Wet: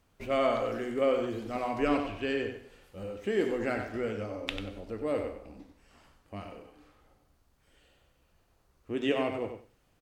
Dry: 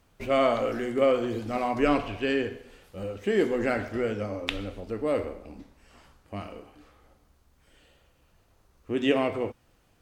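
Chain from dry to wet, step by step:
repeating echo 94 ms, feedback 16%, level −8 dB
level −5 dB

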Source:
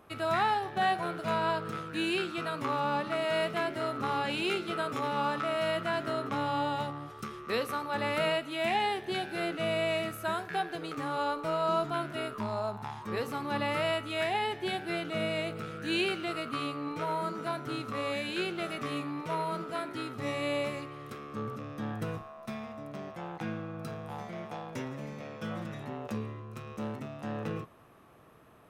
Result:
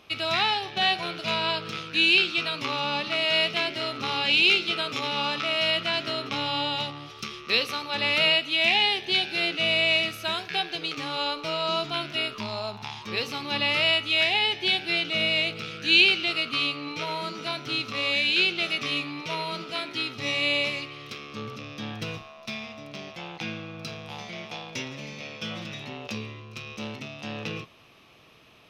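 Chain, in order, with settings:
flat-topped bell 3,700 Hz +16 dB

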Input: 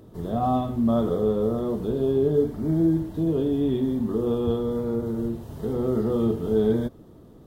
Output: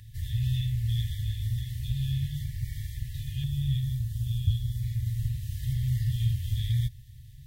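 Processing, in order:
brick-wall band-stop 150–1,700 Hz
parametric band 340 Hz −10.5 dB 1.3 octaves, from 0:03.44 2,000 Hz, from 0:04.83 850 Hz
level +7 dB

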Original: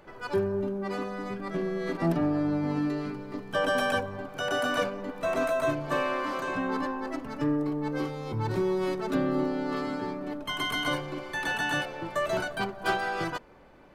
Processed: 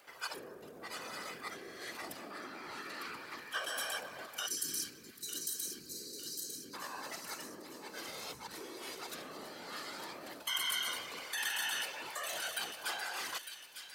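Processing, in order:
sub-octave generator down 1 octave, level −5 dB
0:02.30–0:03.59: drawn EQ curve 640 Hz 0 dB, 1,300 Hz +9 dB, 7,900 Hz −2 dB
0:04.46–0:06.74: time-frequency box erased 390–3,800 Hz
in parallel at 0 dB: compressor whose output falls as the input rises −34 dBFS, ratio −0.5
on the sum: random phases in short frames
first difference
on a send: delay with a high-pass on its return 903 ms, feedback 48%, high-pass 2,300 Hz, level −7.5 dB
on the sum: level +1.5 dB

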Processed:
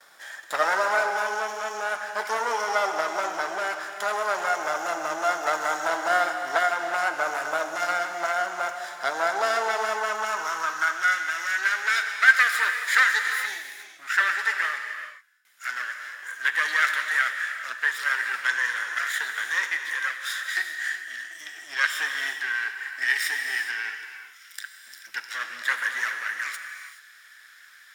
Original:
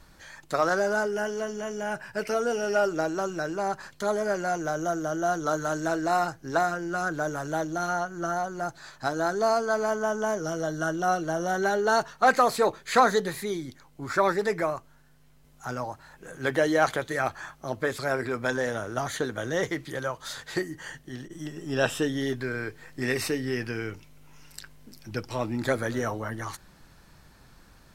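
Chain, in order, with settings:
lower of the sound and its delayed copy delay 0.57 ms
noise gate with hold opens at −51 dBFS
in parallel at −1 dB: downward compressor, threshold −37 dBFS, peak gain reduction 18 dB
on the sum: reverb whose tail is shaped and stops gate 450 ms flat, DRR 5 dB
high-pass filter sweep 770 Hz → 1,700 Hz, 0:09.97–0:11.31

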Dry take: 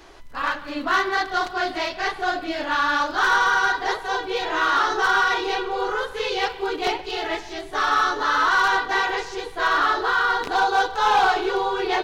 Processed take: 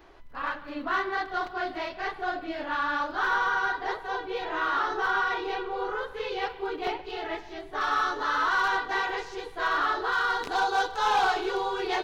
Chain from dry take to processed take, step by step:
parametric band 8,300 Hz −13 dB 1.8 octaves, from 0:07.81 −4.5 dB, from 0:10.12 +2.5 dB
level −6 dB

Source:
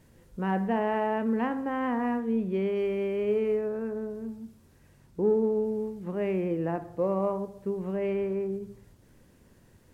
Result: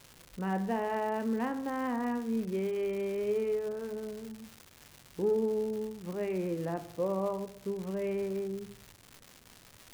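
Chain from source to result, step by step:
flanger 0.23 Hz, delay 6.5 ms, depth 1.2 ms, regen −80%
surface crackle 340 per second −39 dBFS

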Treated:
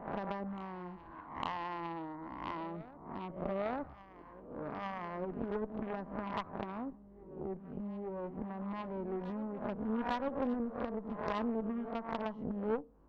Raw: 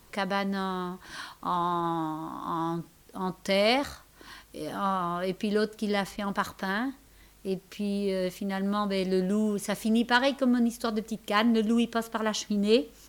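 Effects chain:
peak hold with a rise ahead of every peak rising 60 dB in 0.70 s
Chebyshev low-pass filter 1,000 Hz, order 3
downward compressor 2.5 to 1, threshold −33 dBFS, peak gain reduction 10.5 dB
harmonic generator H 3 −14 dB, 6 −16 dB, 8 −23 dB, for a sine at −20.5 dBFS
backwards echo 853 ms −16.5 dB
level +1.5 dB

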